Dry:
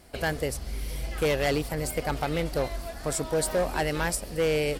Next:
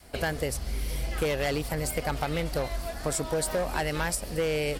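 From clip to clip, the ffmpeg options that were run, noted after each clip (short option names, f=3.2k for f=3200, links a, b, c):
-af "adynamicequalizer=threshold=0.01:dfrequency=350:dqfactor=1.1:tfrequency=350:tqfactor=1.1:attack=5:release=100:ratio=0.375:range=2:mode=cutabove:tftype=bell,acompressor=threshold=-27dB:ratio=6,volume=2.5dB"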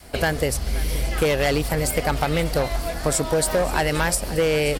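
-af "aecho=1:1:528:0.141,volume=7.5dB"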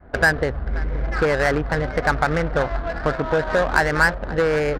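-af "lowpass=f=1.6k:t=q:w=3.4,adynamicsmooth=sensitivity=1.5:basefreq=760"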